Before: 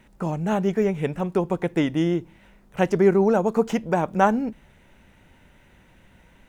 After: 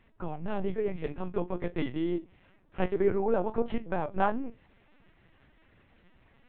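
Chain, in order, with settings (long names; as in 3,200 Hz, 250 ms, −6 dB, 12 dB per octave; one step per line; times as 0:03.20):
tuned comb filter 59 Hz, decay 0.17 s, harmonics all, mix 70%
flanger 0.57 Hz, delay 7.9 ms, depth 3.5 ms, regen +67%
linear-prediction vocoder at 8 kHz pitch kept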